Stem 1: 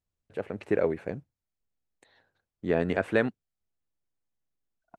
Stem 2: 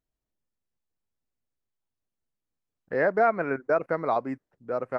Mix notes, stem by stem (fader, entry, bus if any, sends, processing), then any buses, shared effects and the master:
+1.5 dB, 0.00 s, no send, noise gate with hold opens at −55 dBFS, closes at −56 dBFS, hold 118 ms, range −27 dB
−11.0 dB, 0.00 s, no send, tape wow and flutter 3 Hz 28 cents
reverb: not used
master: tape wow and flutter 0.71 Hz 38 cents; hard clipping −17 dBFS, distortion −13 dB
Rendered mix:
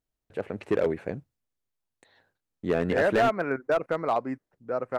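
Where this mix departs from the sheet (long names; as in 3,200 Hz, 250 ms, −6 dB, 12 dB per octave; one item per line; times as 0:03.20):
stem 2 −11.0 dB → 0.0 dB
master: missing tape wow and flutter 0.71 Hz 38 cents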